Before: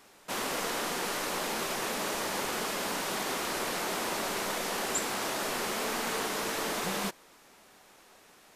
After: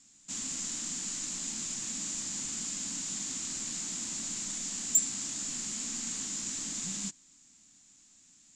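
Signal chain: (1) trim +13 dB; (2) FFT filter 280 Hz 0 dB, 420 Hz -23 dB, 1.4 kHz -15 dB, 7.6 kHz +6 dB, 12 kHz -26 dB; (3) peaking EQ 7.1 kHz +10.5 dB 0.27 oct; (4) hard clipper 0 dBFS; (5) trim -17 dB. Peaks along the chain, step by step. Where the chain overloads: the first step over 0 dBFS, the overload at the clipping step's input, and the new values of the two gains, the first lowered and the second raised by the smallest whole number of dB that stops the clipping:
-6.0 dBFS, -3.5 dBFS, +5.5 dBFS, 0.0 dBFS, -17.0 dBFS; step 3, 5.5 dB; step 1 +7 dB, step 5 -11 dB

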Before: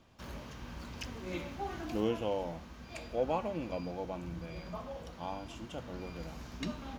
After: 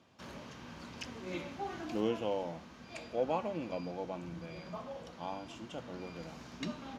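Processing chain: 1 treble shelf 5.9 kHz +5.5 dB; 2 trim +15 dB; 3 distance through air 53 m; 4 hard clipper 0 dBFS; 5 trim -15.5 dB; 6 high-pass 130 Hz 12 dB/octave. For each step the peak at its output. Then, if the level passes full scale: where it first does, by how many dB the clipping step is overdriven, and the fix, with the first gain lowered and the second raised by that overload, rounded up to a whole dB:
-19.0 dBFS, -4.0 dBFS, -4.0 dBFS, -4.0 dBFS, -19.5 dBFS, -20.5 dBFS; nothing clips

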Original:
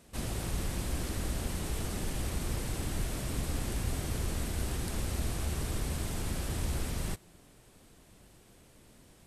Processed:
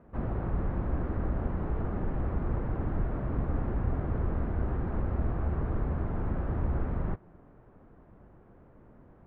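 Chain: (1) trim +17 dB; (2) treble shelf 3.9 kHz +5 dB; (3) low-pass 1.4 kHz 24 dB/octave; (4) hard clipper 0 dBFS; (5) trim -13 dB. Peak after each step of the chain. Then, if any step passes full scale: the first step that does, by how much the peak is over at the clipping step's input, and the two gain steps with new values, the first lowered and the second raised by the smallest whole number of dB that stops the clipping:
-2.5 dBFS, -1.5 dBFS, -4.0 dBFS, -4.0 dBFS, -17.0 dBFS; nothing clips

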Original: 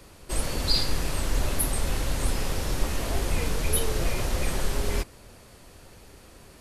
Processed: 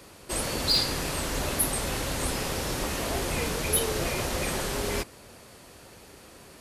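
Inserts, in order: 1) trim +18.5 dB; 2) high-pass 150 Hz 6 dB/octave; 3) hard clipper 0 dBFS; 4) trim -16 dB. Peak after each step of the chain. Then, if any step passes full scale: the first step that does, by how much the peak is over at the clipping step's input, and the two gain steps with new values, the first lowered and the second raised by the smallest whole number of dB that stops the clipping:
+9.0 dBFS, +5.5 dBFS, 0.0 dBFS, -16.0 dBFS; step 1, 5.5 dB; step 1 +12.5 dB, step 4 -10 dB

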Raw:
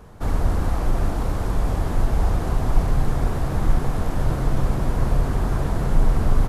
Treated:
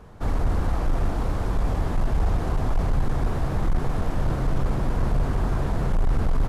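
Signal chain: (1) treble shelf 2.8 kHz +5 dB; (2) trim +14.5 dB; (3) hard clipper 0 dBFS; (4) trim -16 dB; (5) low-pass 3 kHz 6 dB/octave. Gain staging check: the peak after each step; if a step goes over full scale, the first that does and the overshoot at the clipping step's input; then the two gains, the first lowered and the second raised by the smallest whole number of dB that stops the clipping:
-5.5 dBFS, +9.0 dBFS, 0.0 dBFS, -16.0 dBFS, -16.0 dBFS; step 2, 9.0 dB; step 2 +5.5 dB, step 4 -7 dB

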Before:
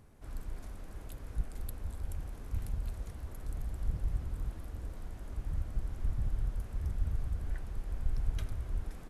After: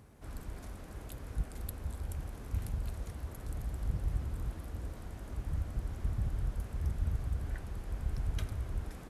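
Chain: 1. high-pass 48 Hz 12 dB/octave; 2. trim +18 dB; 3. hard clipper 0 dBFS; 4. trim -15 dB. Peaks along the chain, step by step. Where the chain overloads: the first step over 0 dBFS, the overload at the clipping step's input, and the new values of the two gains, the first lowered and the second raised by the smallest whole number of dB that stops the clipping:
-24.0 dBFS, -6.0 dBFS, -6.0 dBFS, -21.0 dBFS; nothing clips

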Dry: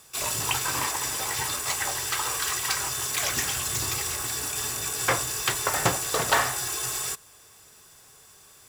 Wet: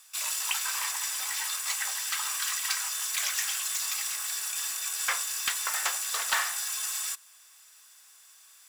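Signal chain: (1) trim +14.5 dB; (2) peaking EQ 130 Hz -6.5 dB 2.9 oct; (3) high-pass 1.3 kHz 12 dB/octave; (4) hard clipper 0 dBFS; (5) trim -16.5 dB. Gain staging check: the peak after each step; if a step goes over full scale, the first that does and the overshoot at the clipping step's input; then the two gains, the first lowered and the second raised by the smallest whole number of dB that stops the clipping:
+7.5 dBFS, +7.5 dBFS, +5.5 dBFS, 0.0 dBFS, -16.5 dBFS; step 1, 5.5 dB; step 1 +8.5 dB, step 5 -10.5 dB

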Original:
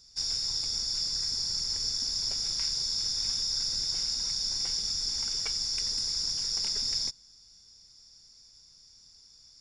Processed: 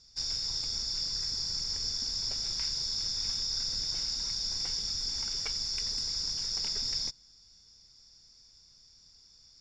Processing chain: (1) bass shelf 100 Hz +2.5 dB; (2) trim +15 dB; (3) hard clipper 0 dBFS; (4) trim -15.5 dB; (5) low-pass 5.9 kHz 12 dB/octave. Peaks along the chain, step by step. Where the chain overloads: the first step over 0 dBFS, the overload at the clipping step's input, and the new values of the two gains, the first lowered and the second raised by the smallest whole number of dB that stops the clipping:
-17.0 dBFS, -2.0 dBFS, -2.0 dBFS, -17.5 dBFS, -19.5 dBFS; nothing clips

